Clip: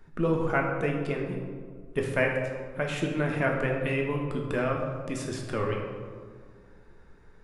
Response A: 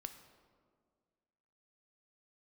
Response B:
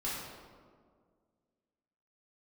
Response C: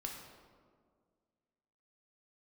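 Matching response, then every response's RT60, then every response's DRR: C; 1.9, 1.9, 1.9 seconds; 7.5, −8.5, 0.0 decibels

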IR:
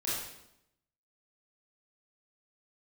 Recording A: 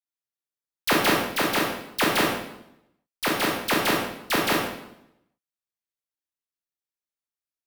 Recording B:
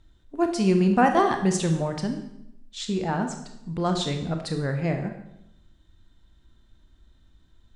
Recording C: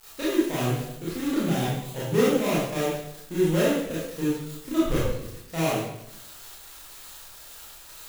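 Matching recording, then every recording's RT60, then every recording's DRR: C; 0.80, 0.80, 0.80 seconds; −2.5, 4.5, −9.0 decibels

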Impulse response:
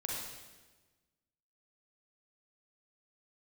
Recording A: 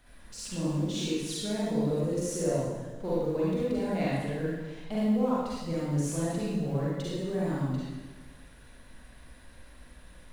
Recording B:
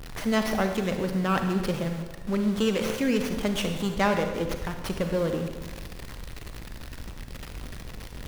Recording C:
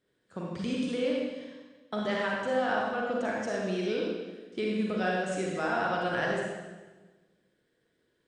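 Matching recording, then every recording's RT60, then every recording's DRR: C; 1.3, 1.3, 1.3 seconds; −8.0, 5.5, −3.5 decibels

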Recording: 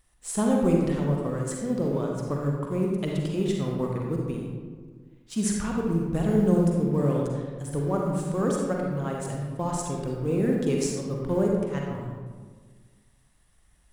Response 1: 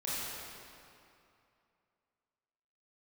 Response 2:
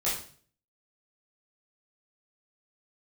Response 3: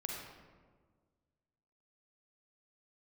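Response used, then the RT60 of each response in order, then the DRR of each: 3; 2.6, 0.45, 1.6 seconds; −9.5, −9.5, −1.0 decibels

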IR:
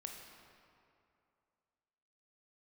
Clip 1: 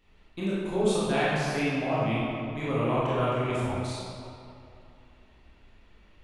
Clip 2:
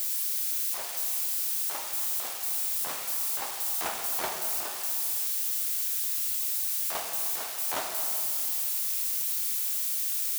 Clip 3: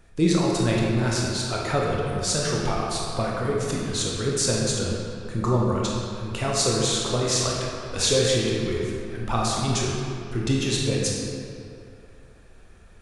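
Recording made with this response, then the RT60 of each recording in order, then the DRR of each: 2; 2.6, 2.6, 2.6 seconds; −9.5, 1.5, −3.5 decibels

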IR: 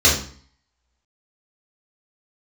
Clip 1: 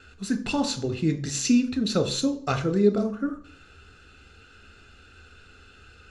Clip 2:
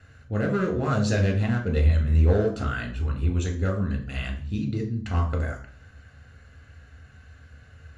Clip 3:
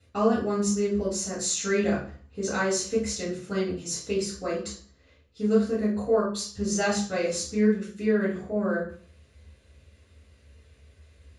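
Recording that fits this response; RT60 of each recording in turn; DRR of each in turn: 3; 0.50, 0.50, 0.50 seconds; 7.5, 1.5, −7.0 decibels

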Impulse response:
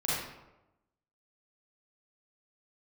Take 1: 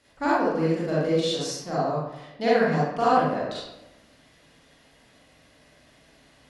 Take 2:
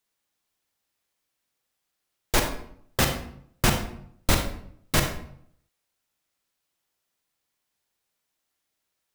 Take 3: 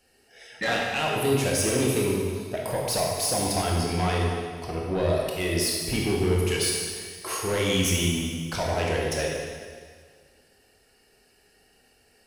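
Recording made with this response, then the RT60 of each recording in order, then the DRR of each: 1; 1.0, 0.65, 1.8 seconds; −8.5, 4.0, −2.5 decibels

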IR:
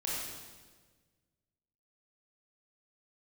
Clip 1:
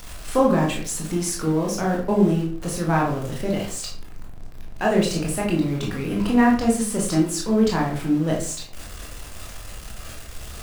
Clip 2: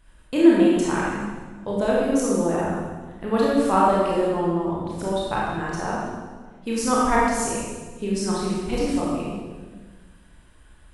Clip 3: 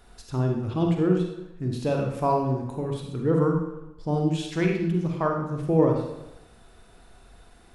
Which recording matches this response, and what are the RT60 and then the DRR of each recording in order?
2; 0.50, 1.5, 0.90 seconds; −2.5, −6.0, 1.5 decibels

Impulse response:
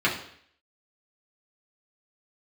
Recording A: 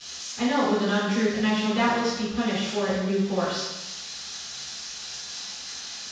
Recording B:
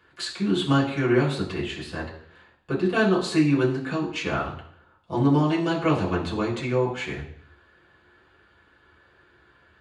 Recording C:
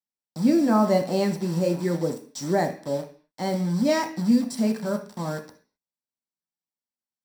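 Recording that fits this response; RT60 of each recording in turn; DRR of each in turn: B; 0.95, 0.60, 0.45 seconds; −12.0, −6.0, 2.5 decibels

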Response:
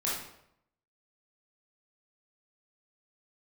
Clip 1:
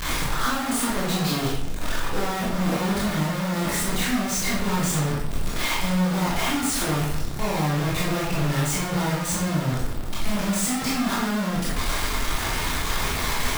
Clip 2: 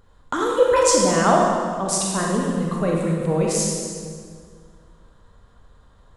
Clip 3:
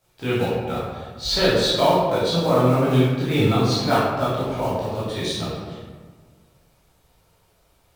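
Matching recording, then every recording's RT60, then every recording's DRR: 1; 0.75, 2.0, 1.5 seconds; −7.0, −2.0, −10.5 decibels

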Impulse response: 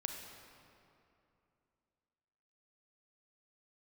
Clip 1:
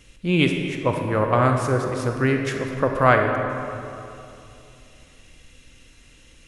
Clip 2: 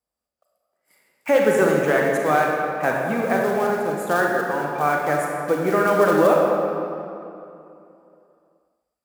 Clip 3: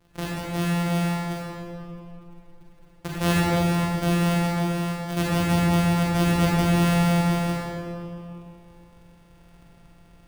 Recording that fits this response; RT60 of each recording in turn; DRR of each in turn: 1; 2.7, 2.7, 2.7 seconds; 3.0, −1.0, −6.0 decibels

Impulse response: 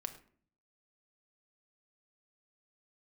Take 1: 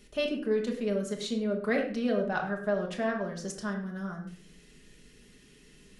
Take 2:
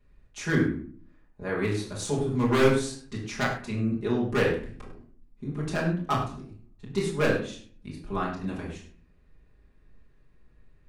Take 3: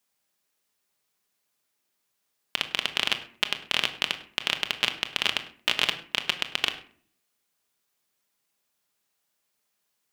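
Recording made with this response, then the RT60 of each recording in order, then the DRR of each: 3; 0.50 s, 0.50 s, non-exponential decay; 0.5, −6.5, 6.5 decibels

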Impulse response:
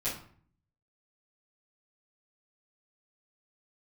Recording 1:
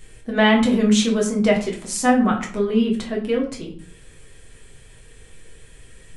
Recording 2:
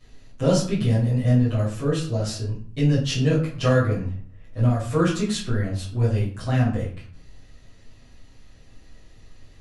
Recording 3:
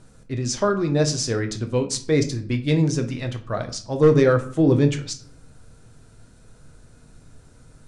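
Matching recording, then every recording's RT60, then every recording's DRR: 2; 0.50, 0.50, 0.55 seconds; −1.5, −11.5, 5.5 decibels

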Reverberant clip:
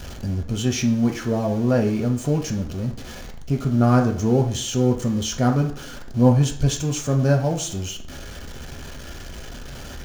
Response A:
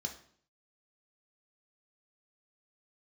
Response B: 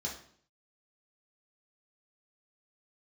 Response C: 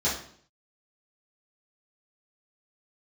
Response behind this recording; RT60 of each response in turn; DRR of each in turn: A; 0.55, 0.55, 0.55 seconds; 2.0, −4.0, −11.0 decibels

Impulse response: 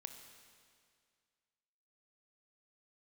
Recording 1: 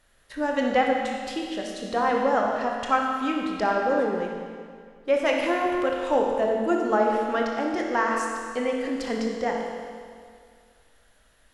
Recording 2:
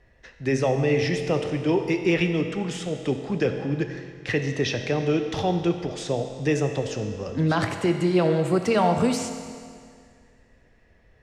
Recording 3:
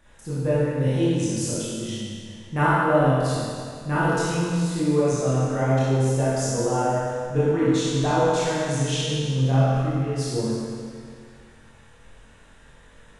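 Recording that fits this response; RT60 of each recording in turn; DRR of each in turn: 2; 2.1, 2.1, 2.1 seconds; −0.5, 6.0, −10.0 decibels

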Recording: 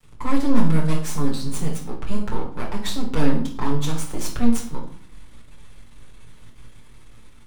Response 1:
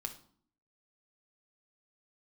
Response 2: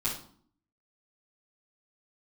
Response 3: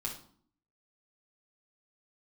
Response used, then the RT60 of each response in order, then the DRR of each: 3; 0.55, 0.55, 0.55 seconds; 4.0, −11.0, −3.5 decibels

